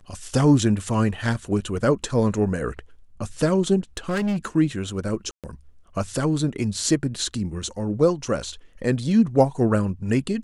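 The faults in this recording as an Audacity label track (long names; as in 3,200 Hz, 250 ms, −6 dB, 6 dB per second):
3.970000	4.460000	clipping −20.5 dBFS
5.310000	5.440000	drop-out 127 ms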